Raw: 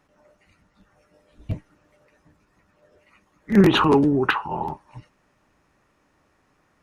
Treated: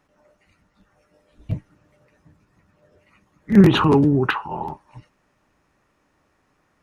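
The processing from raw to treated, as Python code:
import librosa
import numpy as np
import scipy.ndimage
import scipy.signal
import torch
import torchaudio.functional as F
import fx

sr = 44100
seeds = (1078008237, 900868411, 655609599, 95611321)

y = fx.peak_eq(x, sr, hz=120.0, db=8.5, octaves=1.7, at=(1.52, 4.27))
y = F.gain(torch.from_numpy(y), -1.0).numpy()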